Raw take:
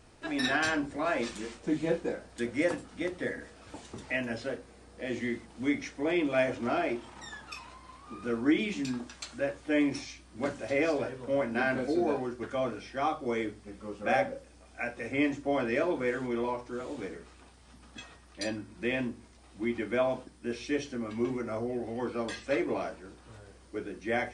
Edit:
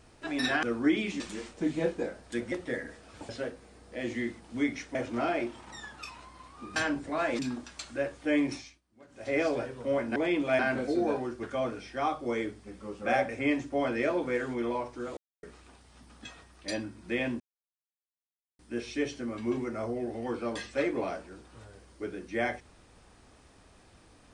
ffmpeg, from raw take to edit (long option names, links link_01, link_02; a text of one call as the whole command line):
ffmpeg -i in.wav -filter_complex "[0:a]asplit=17[link_01][link_02][link_03][link_04][link_05][link_06][link_07][link_08][link_09][link_10][link_11][link_12][link_13][link_14][link_15][link_16][link_17];[link_01]atrim=end=0.632[link_18];[link_02]atrim=start=8.248:end=8.822[link_19];[link_03]atrim=start=1.258:end=2.582[link_20];[link_04]atrim=start=3.048:end=3.822[link_21];[link_05]atrim=start=4.348:end=6.012[link_22];[link_06]atrim=start=6.438:end=8.252[link_23];[link_07]atrim=start=0.628:end=1.262[link_24];[link_08]atrim=start=8.818:end=10.24,asetpts=PTS-STARTPTS,afade=type=out:start_time=1.122:duration=0.3:silence=0.0668344[link_25];[link_09]atrim=start=10.24:end=10.51,asetpts=PTS-STARTPTS,volume=-23.5dB[link_26];[link_10]atrim=start=10.51:end=11.592,asetpts=PTS-STARTPTS,afade=type=in:duration=0.3:silence=0.0668344[link_27];[link_11]atrim=start=6.008:end=6.442[link_28];[link_12]atrim=start=11.588:end=14.292[link_29];[link_13]atrim=start=15.018:end=16.9,asetpts=PTS-STARTPTS,afade=type=out:start_time=1.878:duration=0.004:curve=hsin[link_30];[link_14]atrim=start=16.9:end=17.16,asetpts=PTS-STARTPTS,volume=0[link_31];[link_15]atrim=start=17.16:end=19.13,asetpts=PTS-STARTPTS,afade=type=in:duration=0.004:curve=hsin,afade=type=out:start_time=1.966:duration=0.004:curve=hsin[link_32];[link_16]atrim=start=19.13:end=20.32,asetpts=PTS-STARTPTS,volume=0[link_33];[link_17]atrim=start=20.32,asetpts=PTS-STARTPTS,afade=type=in:duration=0.004:curve=hsin[link_34];[link_18][link_19]acrossfade=duration=0.004:curve1=hsin:curve2=hsin[link_35];[link_35][link_20]acrossfade=duration=0.004:curve1=hsin:curve2=hsin[link_36];[link_36][link_21]acrossfade=duration=0.004:curve1=hsin:curve2=hsin[link_37];[link_37][link_22]acrossfade=duration=0.004:curve1=hsin:curve2=hsin[link_38];[link_38][link_23]acrossfade=duration=0.004:curve1=hsin:curve2=hsin[link_39];[link_39][link_24]acrossfade=duration=0.004:curve1=hsin:curve2=hsin[link_40];[link_25][link_26][link_27]concat=n=3:v=0:a=1[link_41];[link_40][link_41]acrossfade=duration=0.004:curve1=hsin:curve2=hsin[link_42];[link_42][link_28]acrossfade=duration=0.004:curve1=hsin:curve2=hsin[link_43];[link_43][link_29]acrossfade=duration=0.004:curve1=hsin:curve2=hsin[link_44];[link_30][link_31][link_32][link_33][link_34]concat=n=5:v=0:a=1[link_45];[link_44][link_45]acrossfade=duration=0.004:curve1=hsin:curve2=hsin" out.wav